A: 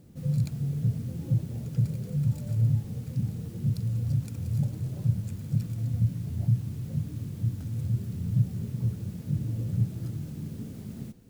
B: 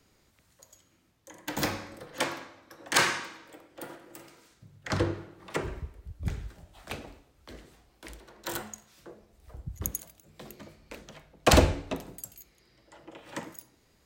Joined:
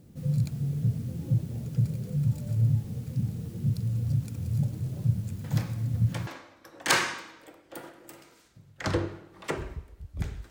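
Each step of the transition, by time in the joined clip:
A
5.44 add B from 1.5 s 0.83 s -11 dB
6.27 switch to B from 2.33 s

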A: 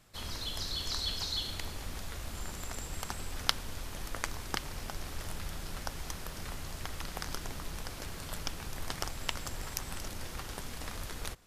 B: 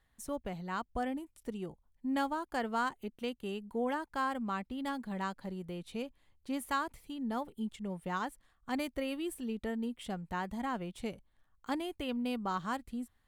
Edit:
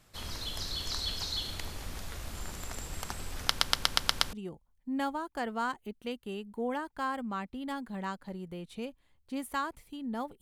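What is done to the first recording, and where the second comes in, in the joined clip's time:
A
3.49 stutter in place 0.12 s, 7 plays
4.33 switch to B from 1.5 s

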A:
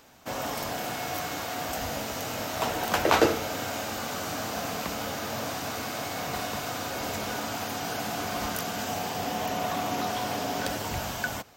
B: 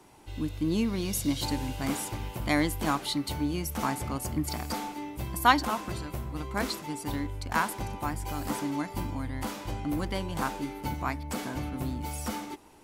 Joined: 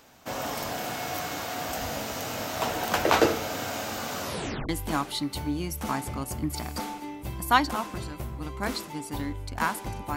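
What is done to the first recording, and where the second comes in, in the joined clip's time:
A
4.21 tape stop 0.48 s
4.69 switch to B from 2.63 s

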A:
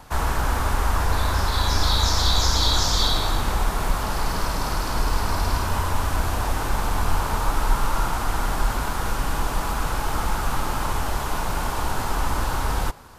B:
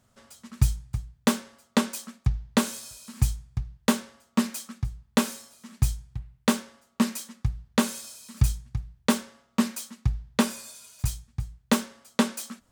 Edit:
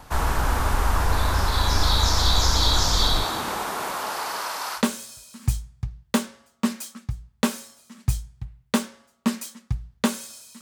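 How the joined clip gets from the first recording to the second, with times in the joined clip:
A
3.23–4.83 HPF 160 Hz -> 1000 Hz
4.79 switch to B from 2.53 s, crossfade 0.08 s

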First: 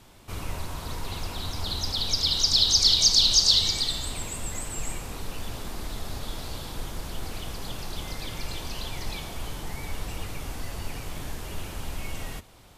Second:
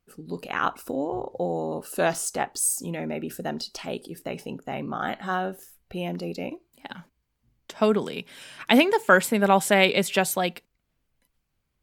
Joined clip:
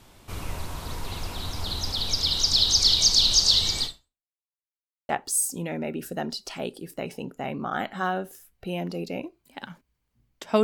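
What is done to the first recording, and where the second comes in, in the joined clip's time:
first
3.85–4.31 fade out exponential
4.31–5.09 mute
5.09 switch to second from 2.37 s

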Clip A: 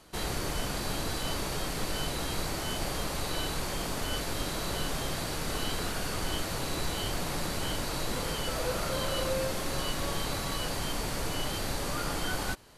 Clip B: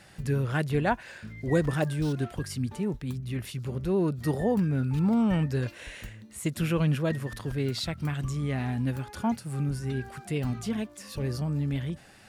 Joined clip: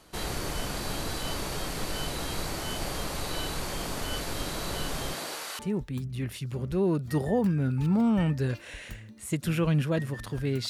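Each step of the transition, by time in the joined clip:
clip A
5.12–5.59 HPF 190 Hz -> 1200 Hz
5.59 switch to clip B from 2.72 s

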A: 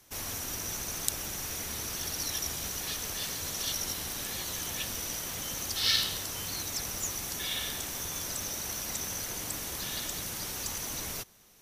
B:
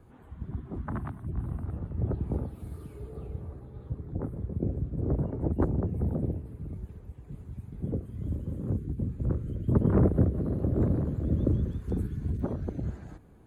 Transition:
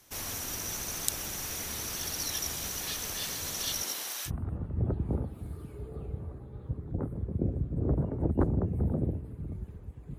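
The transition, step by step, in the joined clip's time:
A
3.82–4.31 HPF 230 Hz -> 1000 Hz
4.28 switch to B from 1.49 s, crossfade 0.06 s

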